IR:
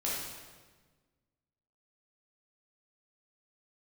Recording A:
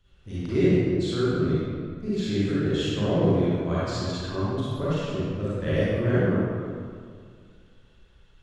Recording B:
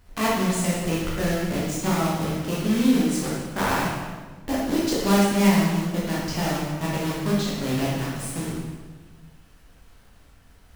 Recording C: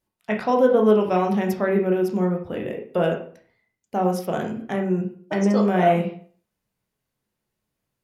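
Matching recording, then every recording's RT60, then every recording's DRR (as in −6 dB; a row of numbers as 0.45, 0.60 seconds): B; 2.1, 1.4, 0.50 seconds; −11.0, −6.5, 1.0 decibels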